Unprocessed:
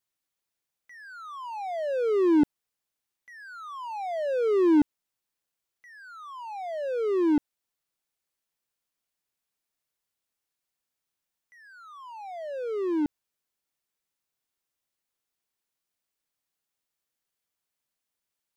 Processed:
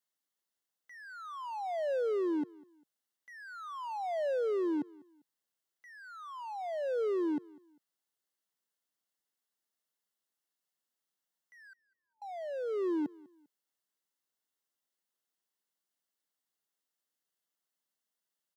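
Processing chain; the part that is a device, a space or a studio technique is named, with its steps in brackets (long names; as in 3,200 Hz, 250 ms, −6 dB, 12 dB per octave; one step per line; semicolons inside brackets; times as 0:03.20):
0:11.73–0:12.22: Butterworth low-pass 620 Hz 72 dB per octave
PA system with an anti-feedback notch (high-pass filter 160 Hz 24 dB per octave; Butterworth band-reject 2,400 Hz, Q 6; brickwall limiter −25 dBFS, peak gain reduction 11 dB)
repeating echo 199 ms, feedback 32%, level −23 dB
level −3.5 dB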